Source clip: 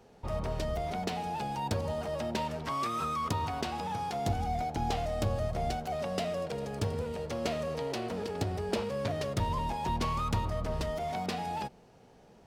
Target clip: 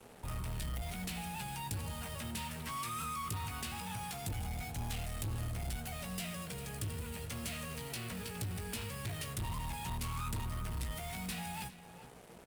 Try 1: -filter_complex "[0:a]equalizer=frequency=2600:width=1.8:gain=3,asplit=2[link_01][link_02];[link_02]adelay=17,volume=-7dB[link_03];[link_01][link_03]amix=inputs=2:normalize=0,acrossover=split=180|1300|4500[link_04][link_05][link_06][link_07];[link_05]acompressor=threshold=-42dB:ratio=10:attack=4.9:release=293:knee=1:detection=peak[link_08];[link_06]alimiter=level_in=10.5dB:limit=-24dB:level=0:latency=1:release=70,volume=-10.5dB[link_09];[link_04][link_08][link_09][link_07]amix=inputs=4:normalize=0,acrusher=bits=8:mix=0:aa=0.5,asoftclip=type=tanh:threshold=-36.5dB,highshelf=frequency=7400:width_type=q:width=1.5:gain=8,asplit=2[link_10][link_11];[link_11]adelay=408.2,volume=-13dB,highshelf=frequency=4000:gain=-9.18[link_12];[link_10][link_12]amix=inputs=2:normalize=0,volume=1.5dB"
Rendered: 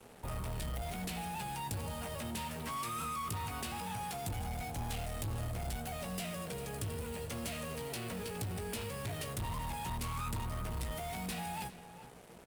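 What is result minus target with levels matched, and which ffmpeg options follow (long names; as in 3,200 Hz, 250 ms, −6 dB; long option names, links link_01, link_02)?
downward compressor: peak gain reduction −8.5 dB
-filter_complex "[0:a]equalizer=frequency=2600:width=1.8:gain=3,asplit=2[link_01][link_02];[link_02]adelay=17,volume=-7dB[link_03];[link_01][link_03]amix=inputs=2:normalize=0,acrossover=split=180|1300|4500[link_04][link_05][link_06][link_07];[link_05]acompressor=threshold=-51.5dB:ratio=10:attack=4.9:release=293:knee=1:detection=peak[link_08];[link_06]alimiter=level_in=10.5dB:limit=-24dB:level=0:latency=1:release=70,volume=-10.5dB[link_09];[link_04][link_08][link_09][link_07]amix=inputs=4:normalize=0,acrusher=bits=8:mix=0:aa=0.5,asoftclip=type=tanh:threshold=-36.5dB,highshelf=frequency=7400:width_type=q:width=1.5:gain=8,asplit=2[link_10][link_11];[link_11]adelay=408.2,volume=-13dB,highshelf=frequency=4000:gain=-9.18[link_12];[link_10][link_12]amix=inputs=2:normalize=0,volume=1.5dB"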